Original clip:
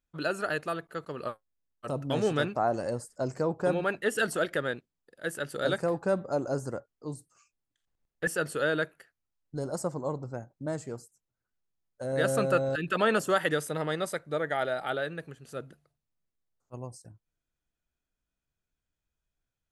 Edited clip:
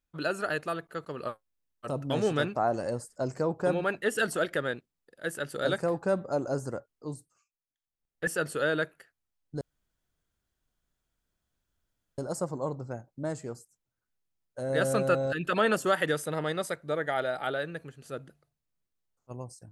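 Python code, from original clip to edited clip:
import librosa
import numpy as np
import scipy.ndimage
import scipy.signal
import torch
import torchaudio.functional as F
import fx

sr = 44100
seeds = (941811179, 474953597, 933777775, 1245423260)

y = fx.edit(x, sr, fx.fade_down_up(start_s=7.13, length_s=1.16, db=-14.5, fade_s=0.34),
    fx.insert_room_tone(at_s=9.61, length_s=2.57), tone=tone)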